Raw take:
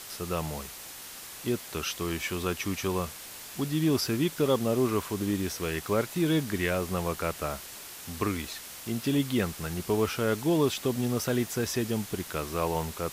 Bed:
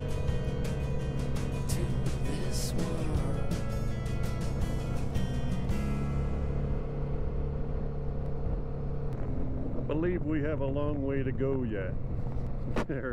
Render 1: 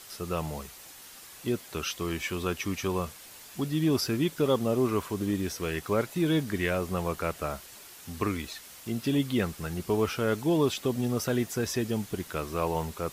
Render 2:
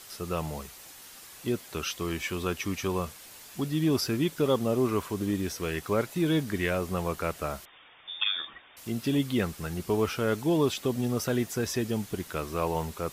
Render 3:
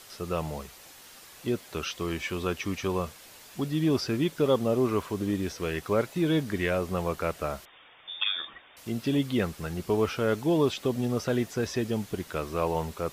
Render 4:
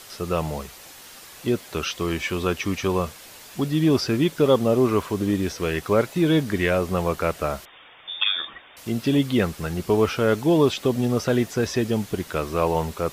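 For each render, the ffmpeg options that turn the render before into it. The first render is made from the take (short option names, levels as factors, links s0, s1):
-af "afftdn=nr=6:nf=-44"
-filter_complex "[0:a]asettb=1/sr,asplit=3[s0][s1][s2];[s0]atrim=end=7.654[s3];[s1]atrim=start=7.65:end=8.77,asetpts=PTS-STARTPTS,afade=t=in:d=0.004:c=qsin,afade=t=out:st=1.116:d=0.004:c=qsin,lowpass=f=3100:t=q:w=0.5098,lowpass=f=3100:t=q:w=0.6013,lowpass=f=3100:t=q:w=0.9,lowpass=f=3100:t=q:w=2.563,afreqshift=-3700[s4];[s2]atrim=start=8.766[s5];[s3][s4]acrossfade=d=0.004:c1=hsin:c2=qsin[s6];[s6][s5]acrossfade=d=0.004:c1=qsin:c2=hsin"
-filter_complex "[0:a]acrossover=split=5900[s0][s1];[s1]acompressor=threshold=0.00316:ratio=4:attack=1:release=60[s2];[s0][s2]amix=inputs=2:normalize=0,equalizer=f=550:t=o:w=0.77:g=2.5"
-af "volume=2"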